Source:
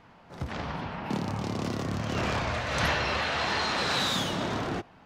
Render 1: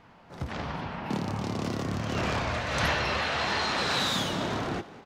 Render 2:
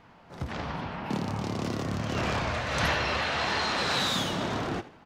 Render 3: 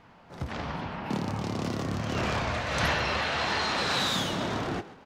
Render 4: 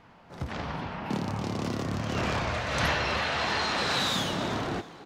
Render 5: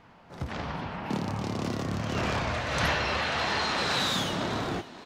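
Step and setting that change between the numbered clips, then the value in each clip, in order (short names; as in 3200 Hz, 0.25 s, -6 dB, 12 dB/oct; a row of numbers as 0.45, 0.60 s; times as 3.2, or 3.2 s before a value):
frequency-shifting echo, time: 199, 81, 134, 323, 538 ms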